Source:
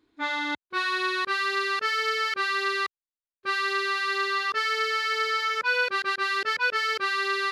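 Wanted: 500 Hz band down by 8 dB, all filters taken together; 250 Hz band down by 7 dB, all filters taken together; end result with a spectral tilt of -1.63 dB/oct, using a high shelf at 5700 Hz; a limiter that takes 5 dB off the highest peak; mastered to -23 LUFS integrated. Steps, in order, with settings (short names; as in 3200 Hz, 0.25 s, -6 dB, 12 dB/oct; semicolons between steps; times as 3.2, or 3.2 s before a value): bell 250 Hz -5 dB; bell 500 Hz -8.5 dB; high shelf 5700 Hz +4 dB; gain +5 dB; limiter -15.5 dBFS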